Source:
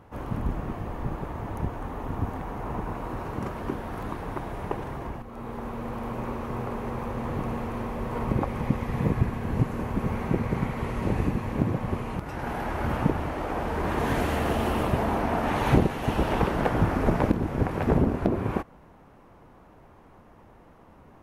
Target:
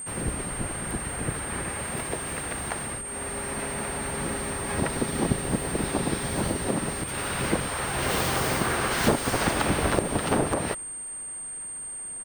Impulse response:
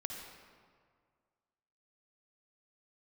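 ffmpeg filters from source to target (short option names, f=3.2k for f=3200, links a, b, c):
-filter_complex "[0:a]asplit=3[a][b][c];[b]asetrate=29433,aresample=44100,atempo=1.49831,volume=-5dB[d];[c]asetrate=58866,aresample=44100,atempo=0.749154,volume=-6dB[e];[a][d][e]amix=inputs=3:normalize=0,aeval=exprs='val(0)+0.01*sin(2*PI*5000*n/s)':c=same,asetrate=76440,aresample=44100,aemphasis=mode=production:type=50kf,volume=-3dB"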